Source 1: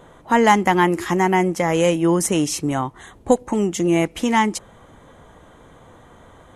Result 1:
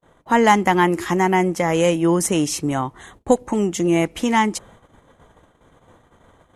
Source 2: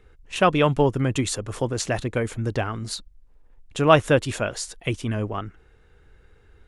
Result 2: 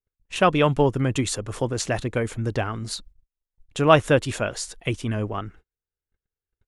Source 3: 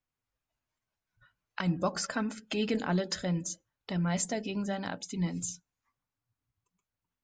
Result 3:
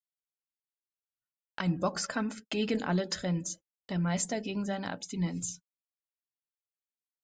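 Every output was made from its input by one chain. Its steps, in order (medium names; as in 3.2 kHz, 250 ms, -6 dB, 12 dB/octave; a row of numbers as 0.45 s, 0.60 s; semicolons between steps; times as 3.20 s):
gate -45 dBFS, range -40 dB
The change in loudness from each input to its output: 0.0 LU, 0.0 LU, 0.0 LU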